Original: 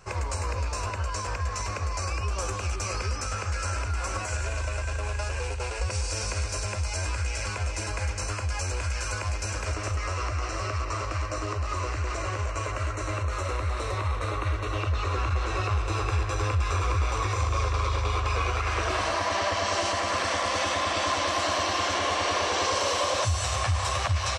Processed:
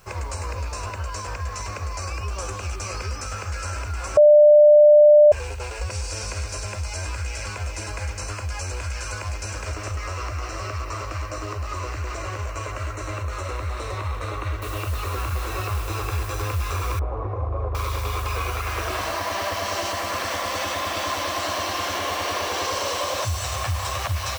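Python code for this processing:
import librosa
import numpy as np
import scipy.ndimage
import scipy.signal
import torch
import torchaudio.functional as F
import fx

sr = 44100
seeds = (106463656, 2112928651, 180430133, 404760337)

y = fx.noise_floor_step(x, sr, seeds[0], at_s=14.62, before_db=-61, after_db=-42, tilt_db=0.0)
y = fx.lowpass_res(y, sr, hz=690.0, q=1.5, at=(16.99, 17.75))
y = fx.edit(y, sr, fx.bleep(start_s=4.17, length_s=1.15, hz=596.0, db=-8.0), tone=tone)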